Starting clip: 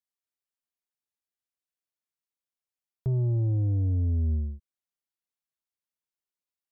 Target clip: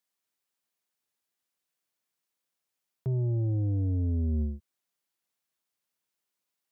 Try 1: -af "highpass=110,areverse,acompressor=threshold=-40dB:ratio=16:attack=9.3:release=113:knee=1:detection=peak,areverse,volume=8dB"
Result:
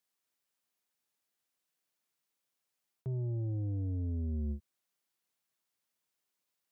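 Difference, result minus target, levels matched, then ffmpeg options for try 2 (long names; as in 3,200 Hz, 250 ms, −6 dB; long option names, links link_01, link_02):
downward compressor: peak gain reduction +7 dB
-af "highpass=110,areverse,acompressor=threshold=-32.5dB:ratio=16:attack=9.3:release=113:knee=1:detection=peak,areverse,volume=8dB"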